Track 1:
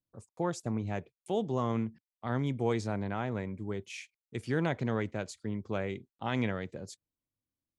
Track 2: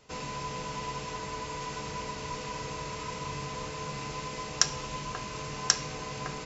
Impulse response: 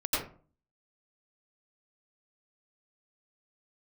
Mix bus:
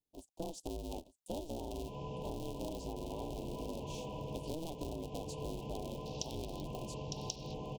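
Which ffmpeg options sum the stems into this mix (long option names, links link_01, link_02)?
-filter_complex "[0:a]aeval=exprs='val(0)*sgn(sin(2*PI*160*n/s))':channel_layout=same,volume=-2.5dB,asplit=2[link_01][link_02];[link_02]volume=-15dB[link_03];[1:a]acrossover=split=5000[link_04][link_05];[link_05]acompressor=threshold=-56dB:ratio=4:attack=1:release=60[link_06];[link_04][link_06]amix=inputs=2:normalize=0,afwtdn=0.00501,adelay=1600,volume=-1.5dB,asplit=2[link_07][link_08];[link_08]volume=-9.5dB[link_09];[link_03][link_09]amix=inputs=2:normalize=0,aecho=0:1:906:1[link_10];[link_01][link_07][link_10]amix=inputs=3:normalize=0,asuperstop=centerf=1600:order=8:qfactor=0.78,acompressor=threshold=-37dB:ratio=10"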